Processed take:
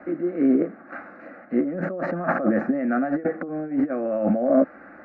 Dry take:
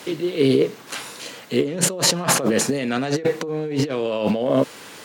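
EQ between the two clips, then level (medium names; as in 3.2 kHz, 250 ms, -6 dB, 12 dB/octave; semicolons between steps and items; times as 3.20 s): low-pass 1.6 kHz 24 dB/octave; static phaser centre 650 Hz, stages 8; +2.0 dB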